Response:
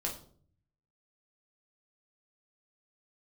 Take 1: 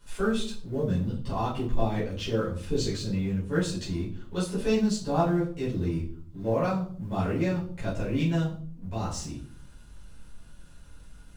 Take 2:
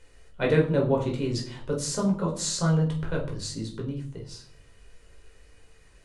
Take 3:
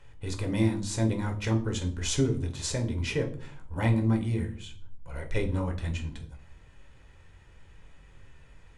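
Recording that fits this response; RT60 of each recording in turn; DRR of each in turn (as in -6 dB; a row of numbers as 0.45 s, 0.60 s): 2; 0.50 s, 0.50 s, 0.55 s; -10.0 dB, -1.5 dB, 3.5 dB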